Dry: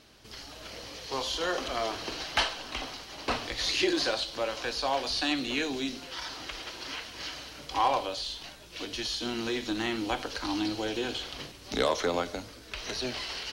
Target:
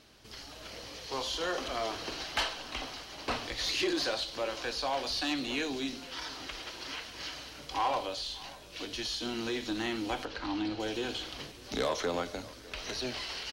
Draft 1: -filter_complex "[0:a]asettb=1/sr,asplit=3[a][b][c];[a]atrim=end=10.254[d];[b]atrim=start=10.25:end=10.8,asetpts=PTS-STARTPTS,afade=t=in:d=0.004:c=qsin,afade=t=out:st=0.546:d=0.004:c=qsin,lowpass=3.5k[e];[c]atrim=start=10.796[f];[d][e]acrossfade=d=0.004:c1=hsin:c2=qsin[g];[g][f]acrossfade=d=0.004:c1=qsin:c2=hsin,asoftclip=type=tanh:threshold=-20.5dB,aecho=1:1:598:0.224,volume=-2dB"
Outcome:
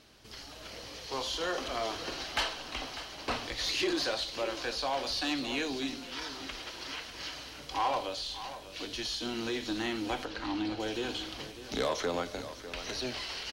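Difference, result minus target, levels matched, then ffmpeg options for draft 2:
echo-to-direct +8 dB
-filter_complex "[0:a]asettb=1/sr,asplit=3[a][b][c];[a]atrim=end=10.254[d];[b]atrim=start=10.25:end=10.8,asetpts=PTS-STARTPTS,afade=t=in:d=0.004:c=qsin,afade=t=out:st=0.546:d=0.004:c=qsin,lowpass=3.5k[e];[c]atrim=start=10.796[f];[d][e]acrossfade=d=0.004:c1=hsin:c2=qsin[g];[g][f]acrossfade=d=0.004:c1=qsin:c2=hsin,asoftclip=type=tanh:threshold=-20.5dB,aecho=1:1:598:0.0891,volume=-2dB"

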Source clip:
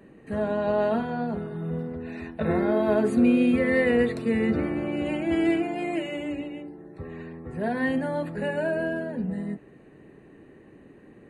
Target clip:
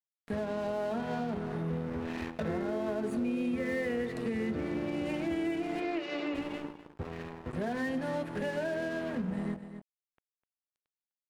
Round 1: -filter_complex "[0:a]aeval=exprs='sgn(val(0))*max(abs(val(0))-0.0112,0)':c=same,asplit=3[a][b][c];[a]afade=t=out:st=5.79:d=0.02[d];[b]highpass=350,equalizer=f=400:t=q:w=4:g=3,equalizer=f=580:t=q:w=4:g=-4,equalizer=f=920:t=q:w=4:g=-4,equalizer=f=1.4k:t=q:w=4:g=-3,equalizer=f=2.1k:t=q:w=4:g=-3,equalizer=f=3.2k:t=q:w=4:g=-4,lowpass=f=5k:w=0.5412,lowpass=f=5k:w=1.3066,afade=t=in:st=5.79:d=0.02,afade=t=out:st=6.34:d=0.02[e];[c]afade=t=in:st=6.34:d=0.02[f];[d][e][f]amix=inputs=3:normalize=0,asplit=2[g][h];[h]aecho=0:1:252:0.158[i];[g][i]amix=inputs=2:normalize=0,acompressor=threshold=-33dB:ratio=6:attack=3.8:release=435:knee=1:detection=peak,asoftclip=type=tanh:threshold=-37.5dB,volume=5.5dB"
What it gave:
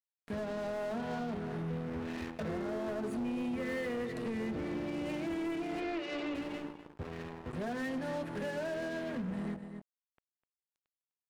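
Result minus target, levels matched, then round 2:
soft clip: distortion +11 dB
-filter_complex "[0:a]aeval=exprs='sgn(val(0))*max(abs(val(0))-0.0112,0)':c=same,asplit=3[a][b][c];[a]afade=t=out:st=5.79:d=0.02[d];[b]highpass=350,equalizer=f=400:t=q:w=4:g=3,equalizer=f=580:t=q:w=4:g=-4,equalizer=f=920:t=q:w=4:g=-4,equalizer=f=1.4k:t=q:w=4:g=-3,equalizer=f=2.1k:t=q:w=4:g=-3,equalizer=f=3.2k:t=q:w=4:g=-4,lowpass=f=5k:w=0.5412,lowpass=f=5k:w=1.3066,afade=t=in:st=5.79:d=0.02,afade=t=out:st=6.34:d=0.02[e];[c]afade=t=in:st=6.34:d=0.02[f];[d][e][f]amix=inputs=3:normalize=0,asplit=2[g][h];[h]aecho=0:1:252:0.158[i];[g][i]amix=inputs=2:normalize=0,acompressor=threshold=-33dB:ratio=6:attack=3.8:release=435:knee=1:detection=peak,asoftclip=type=tanh:threshold=-29dB,volume=5.5dB"

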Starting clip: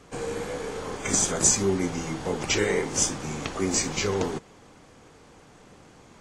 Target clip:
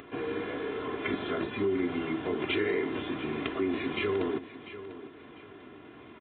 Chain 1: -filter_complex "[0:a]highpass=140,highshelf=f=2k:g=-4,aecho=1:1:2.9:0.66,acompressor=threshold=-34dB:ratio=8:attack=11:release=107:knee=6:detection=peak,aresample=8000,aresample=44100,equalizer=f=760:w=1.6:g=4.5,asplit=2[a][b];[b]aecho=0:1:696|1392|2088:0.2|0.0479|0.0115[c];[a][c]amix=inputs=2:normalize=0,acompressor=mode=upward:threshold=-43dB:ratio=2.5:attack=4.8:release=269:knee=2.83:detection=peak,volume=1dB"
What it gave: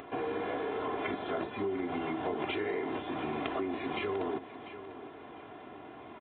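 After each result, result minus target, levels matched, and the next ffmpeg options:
compressor: peak gain reduction +7.5 dB; 1000 Hz band +6.5 dB
-filter_complex "[0:a]highpass=140,highshelf=f=2k:g=-4,aecho=1:1:2.9:0.66,acompressor=threshold=-25.5dB:ratio=8:attack=11:release=107:knee=6:detection=peak,aresample=8000,aresample=44100,equalizer=f=760:w=1.6:g=4.5,asplit=2[a][b];[b]aecho=0:1:696|1392|2088:0.2|0.0479|0.0115[c];[a][c]amix=inputs=2:normalize=0,acompressor=mode=upward:threshold=-43dB:ratio=2.5:attack=4.8:release=269:knee=2.83:detection=peak,volume=1dB"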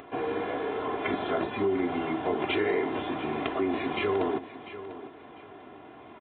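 1000 Hz band +5.5 dB
-filter_complex "[0:a]highpass=140,highshelf=f=2k:g=-4,aecho=1:1:2.9:0.66,acompressor=threshold=-25.5dB:ratio=8:attack=11:release=107:knee=6:detection=peak,aresample=8000,aresample=44100,equalizer=f=760:w=1.6:g=-7,asplit=2[a][b];[b]aecho=0:1:696|1392|2088:0.2|0.0479|0.0115[c];[a][c]amix=inputs=2:normalize=0,acompressor=mode=upward:threshold=-43dB:ratio=2.5:attack=4.8:release=269:knee=2.83:detection=peak,volume=1dB"

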